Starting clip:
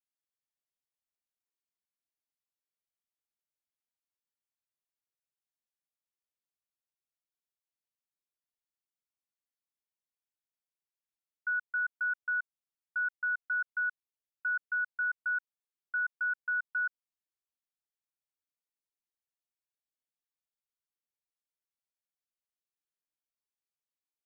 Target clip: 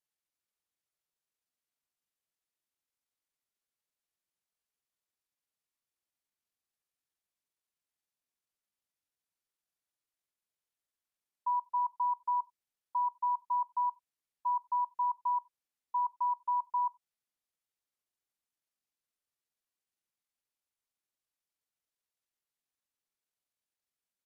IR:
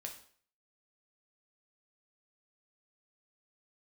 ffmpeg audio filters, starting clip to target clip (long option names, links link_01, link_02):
-filter_complex "[0:a]asetrate=29433,aresample=44100,atempo=1.49831,asplit=2[link_01][link_02];[1:a]atrim=start_sample=2205,atrim=end_sample=4410[link_03];[link_02][link_03]afir=irnorm=-1:irlink=0,volume=-13dB[link_04];[link_01][link_04]amix=inputs=2:normalize=0"